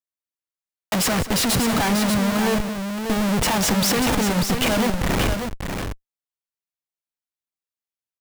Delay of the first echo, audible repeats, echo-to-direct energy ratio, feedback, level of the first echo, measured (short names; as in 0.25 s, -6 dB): 0.187 s, 2, -6.0 dB, no steady repeat, -15.0 dB